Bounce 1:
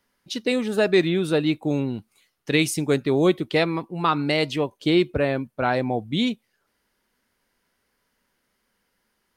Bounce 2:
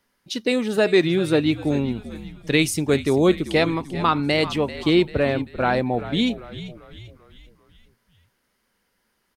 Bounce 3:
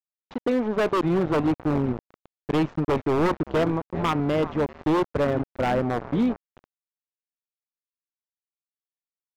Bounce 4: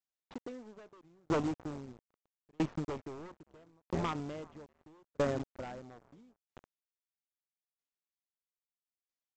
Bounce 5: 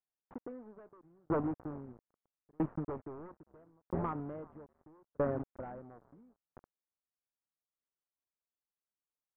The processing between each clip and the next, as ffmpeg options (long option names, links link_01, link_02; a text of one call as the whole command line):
ffmpeg -i in.wav -filter_complex "[0:a]asplit=6[link_01][link_02][link_03][link_04][link_05][link_06];[link_02]adelay=391,afreqshift=-67,volume=-14dB[link_07];[link_03]adelay=782,afreqshift=-134,volume=-20.4dB[link_08];[link_04]adelay=1173,afreqshift=-201,volume=-26.8dB[link_09];[link_05]adelay=1564,afreqshift=-268,volume=-33.1dB[link_10];[link_06]adelay=1955,afreqshift=-335,volume=-39.5dB[link_11];[link_01][link_07][link_08][link_09][link_10][link_11]amix=inputs=6:normalize=0,volume=1.5dB" out.wav
ffmpeg -i in.wav -af "aresample=16000,aeval=exprs='val(0)*gte(abs(val(0)),0.0531)':channel_layout=same,aresample=44100,lowpass=1100,aeval=exprs='0.158*(abs(mod(val(0)/0.158+3,4)-2)-1)':channel_layout=same" out.wav
ffmpeg -i in.wav -af "acompressor=threshold=-30dB:ratio=3,aresample=16000,acrusher=bits=5:mode=log:mix=0:aa=0.000001,aresample=44100,aeval=exprs='val(0)*pow(10,-40*if(lt(mod(0.77*n/s,1),2*abs(0.77)/1000),1-mod(0.77*n/s,1)/(2*abs(0.77)/1000),(mod(0.77*n/s,1)-2*abs(0.77)/1000)/(1-2*abs(0.77)/1000))/20)':channel_layout=same,volume=1.5dB" out.wav
ffmpeg -i in.wav -af "lowpass=frequency=1500:width=0.5412,lowpass=frequency=1500:width=1.3066,volume=-1dB" out.wav